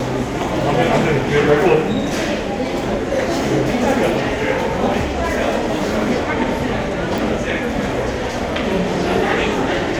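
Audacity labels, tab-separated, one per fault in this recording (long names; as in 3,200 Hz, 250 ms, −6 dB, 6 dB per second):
7.180000	7.180000	click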